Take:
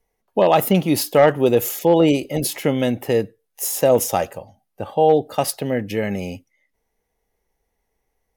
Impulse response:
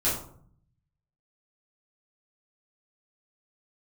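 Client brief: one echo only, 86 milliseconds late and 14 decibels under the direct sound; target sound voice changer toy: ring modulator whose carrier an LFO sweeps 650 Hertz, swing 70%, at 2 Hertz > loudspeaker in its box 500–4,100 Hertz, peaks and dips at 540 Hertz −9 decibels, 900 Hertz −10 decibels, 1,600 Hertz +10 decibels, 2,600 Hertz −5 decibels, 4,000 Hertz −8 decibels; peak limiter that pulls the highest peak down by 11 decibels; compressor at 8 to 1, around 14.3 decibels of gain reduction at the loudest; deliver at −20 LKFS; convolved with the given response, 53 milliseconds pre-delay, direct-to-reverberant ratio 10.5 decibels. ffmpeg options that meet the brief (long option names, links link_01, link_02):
-filter_complex "[0:a]acompressor=threshold=-25dB:ratio=8,alimiter=limit=-23dB:level=0:latency=1,aecho=1:1:86:0.2,asplit=2[link_01][link_02];[1:a]atrim=start_sample=2205,adelay=53[link_03];[link_02][link_03]afir=irnorm=-1:irlink=0,volume=-21dB[link_04];[link_01][link_04]amix=inputs=2:normalize=0,aeval=exprs='val(0)*sin(2*PI*650*n/s+650*0.7/2*sin(2*PI*2*n/s))':channel_layout=same,highpass=500,equalizer=frequency=540:width_type=q:width=4:gain=-9,equalizer=frequency=900:width_type=q:width=4:gain=-10,equalizer=frequency=1600:width_type=q:width=4:gain=10,equalizer=frequency=2600:width_type=q:width=4:gain=-5,equalizer=frequency=4000:width_type=q:width=4:gain=-8,lowpass=frequency=4100:width=0.5412,lowpass=frequency=4100:width=1.3066,volume=15.5dB"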